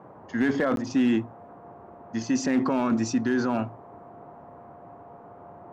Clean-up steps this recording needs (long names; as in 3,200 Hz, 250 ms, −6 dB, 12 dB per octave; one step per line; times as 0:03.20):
clipped peaks rebuilt −16.5 dBFS
notch filter 700 Hz, Q 30
repair the gap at 0:00.76, 12 ms
noise reduction from a noise print 24 dB